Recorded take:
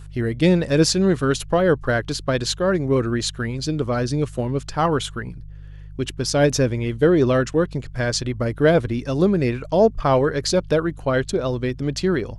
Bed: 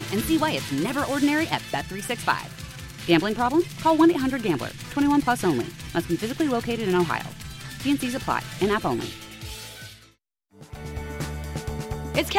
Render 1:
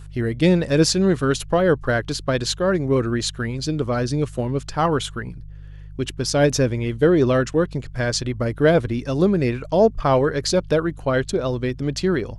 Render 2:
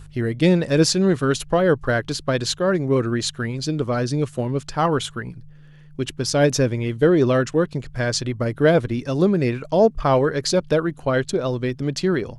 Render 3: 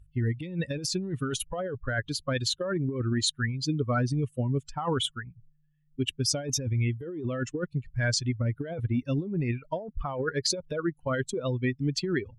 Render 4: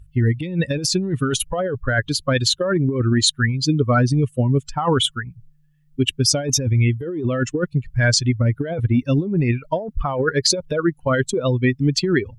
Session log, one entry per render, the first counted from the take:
no audible change
de-hum 50 Hz, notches 2
expander on every frequency bin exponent 2; compressor with a negative ratio -29 dBFS, ratio -1
trim +10 dB; peak limiter -1 dBFS, peak gain reduction 1 dB

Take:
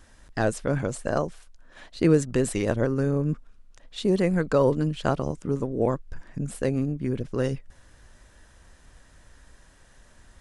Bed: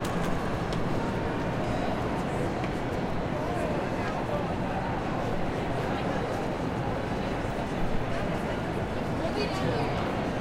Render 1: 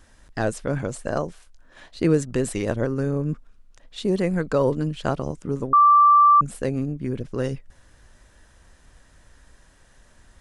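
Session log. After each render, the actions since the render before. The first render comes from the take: 1.26–1.98 s: doubling 23 ms -9.5 dB; 5.73–6.41 s: bleep 1.17 kHz -10.5 dBFS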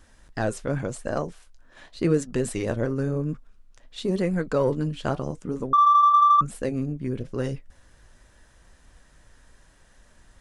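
flange 0.9 Hz, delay 3.3 ms, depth 5.8 ms, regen -70%; in parallel at -9 dB: saturation -20.5 dBFS, distortion -11 dB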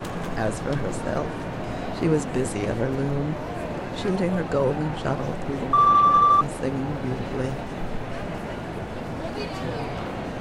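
add bed -1.5 dB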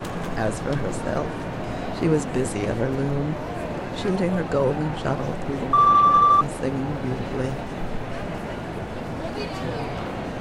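trim +1 dB

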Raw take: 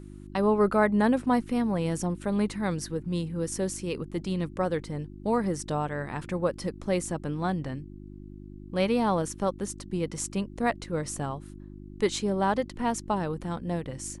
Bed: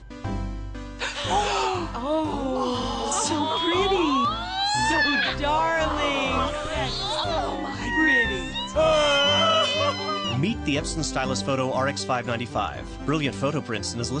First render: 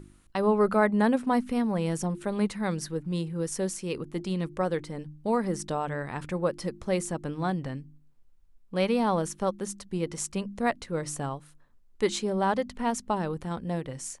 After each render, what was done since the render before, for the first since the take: de-hum 50 Hz, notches 7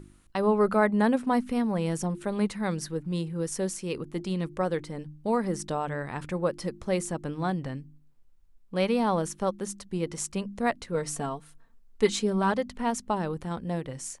10.94–12.52 s: comb 4.4 ms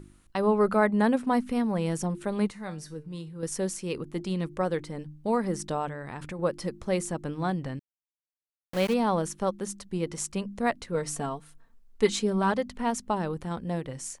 2.50–3.43 s: feedback comb 150 Hz, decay 0.28 s, mix 70%; 5.88–6.39 s: compression 4:1, threshold -33 dBFS; 7.79–8.94 s: small samples zeroed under -32.5 dBFS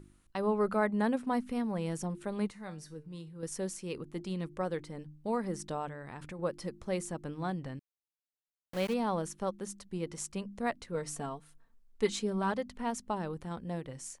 trim -6.5 dB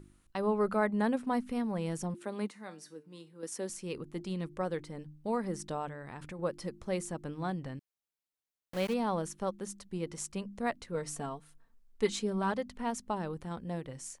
2.14–3.70 s: Chebyshev high-pass 230 Hz, order 3

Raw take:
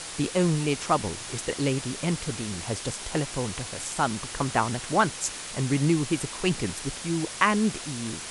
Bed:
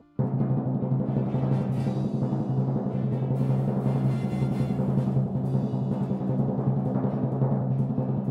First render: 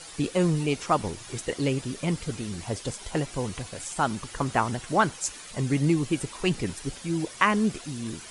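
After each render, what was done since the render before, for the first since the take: noise reduction 10 dB, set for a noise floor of -38 dBFS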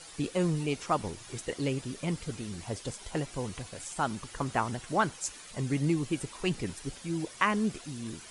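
trim -5 dB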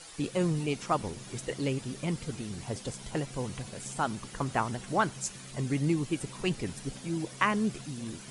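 add bed -22.5 dB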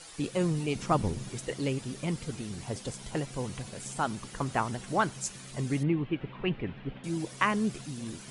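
0.75–1.29 s: bass shelf 290 Hz +10 dB; 5.83–7.04 s: steep low-pass 3.1 kHz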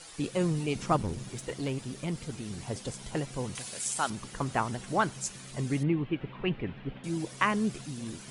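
0.96–2.46 s: valve stage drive 25 dB, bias 0.35; 3.55–4.10 s: tilt EQ +3 dB/octave

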